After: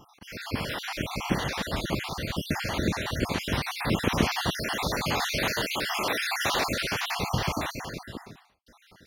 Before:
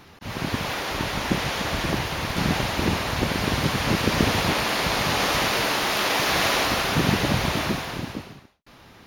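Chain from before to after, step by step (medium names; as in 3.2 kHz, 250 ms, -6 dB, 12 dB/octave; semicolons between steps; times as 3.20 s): random holes in the spectrogram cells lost 49%; trim -2.5 dB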